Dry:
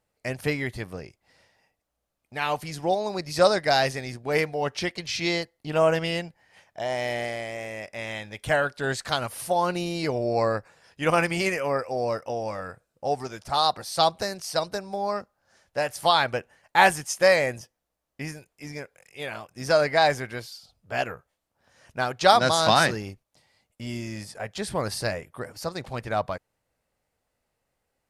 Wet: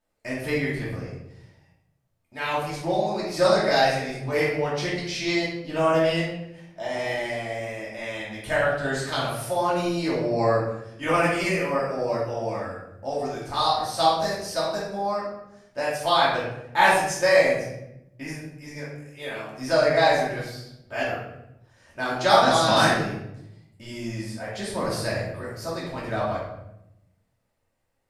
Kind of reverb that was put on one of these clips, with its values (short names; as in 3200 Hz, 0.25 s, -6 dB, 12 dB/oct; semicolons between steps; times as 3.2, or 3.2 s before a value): shoebox room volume 250 m³, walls mixed, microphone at 2.7 m; gain -7.5 dB